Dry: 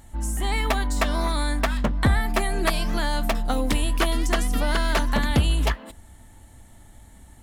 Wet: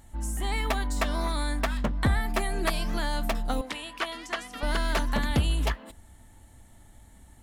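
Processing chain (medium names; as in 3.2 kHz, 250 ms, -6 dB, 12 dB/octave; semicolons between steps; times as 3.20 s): 3.61–4.63 s: band-pass filter 1.9 kHz, Q 0.51; trim -4.5 dB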